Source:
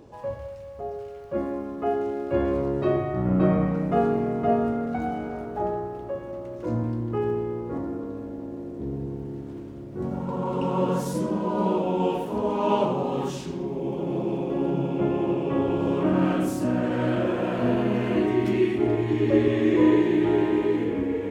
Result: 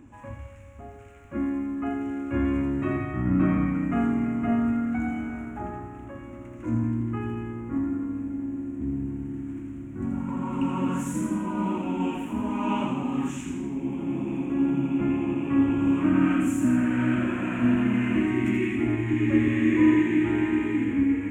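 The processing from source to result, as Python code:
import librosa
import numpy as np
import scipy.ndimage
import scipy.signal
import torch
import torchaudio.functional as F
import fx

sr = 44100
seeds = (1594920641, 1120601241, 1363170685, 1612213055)

y = fx.curve_eq(x, sr, hz=(100.0, 170.0, 270.0, 440.0, 1300.0, 2400.0, 4700.0, 7200.0, 11000.0), db=(0, -8, 5, -20, -2, 2, -24, 2, -8))
y = fx.echo_wet_highpass(y, sr, ms=82, feedback_pct=52, hz=2300.0, wet_db=-4)
y = F.gain(torch.from_numpy(y), 2.5).numpy()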